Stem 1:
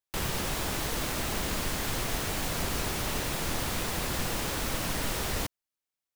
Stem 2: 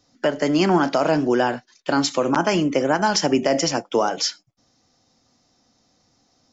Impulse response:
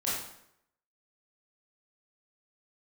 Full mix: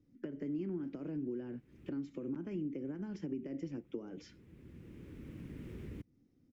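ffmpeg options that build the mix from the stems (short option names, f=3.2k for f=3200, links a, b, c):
-filter_complex "[0:a]highpass=67,adelay=550,volume=-3.5dB[a];[1:a]acompressor=threshold=-20dB:ratio=4,volume=-2dB,asplit=2[b][c];[c]apad=whole_len=295558[d];[a][d]sidechaincompress=threshold=-42dB:ratio=16:attack=46:release=1080[e];[e][b]amix=inputs=2:normalize=0,firequalizer=gain_entry='entry(340,0);entry(690,-26);entry(2200,-15);entry(4200,-30)':delay=0.05:min_phase=1,acompressor=threshold=-46dB:ratio=2"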